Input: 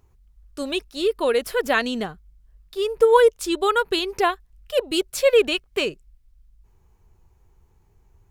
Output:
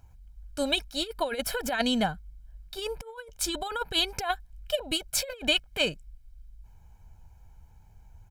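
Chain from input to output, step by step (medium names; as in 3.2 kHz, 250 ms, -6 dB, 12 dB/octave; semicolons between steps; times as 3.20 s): compressor with a negative ratio -23 dBFS, ratio -0.5; comb 1.3 ms, depth 76%; trim -4 dB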